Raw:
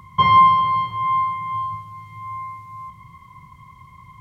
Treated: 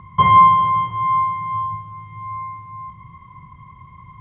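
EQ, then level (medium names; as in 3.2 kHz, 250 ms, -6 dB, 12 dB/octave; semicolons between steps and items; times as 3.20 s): brick-wall FIR low-pass 3.8 kHz; distance through air 410 m; +4.0 dB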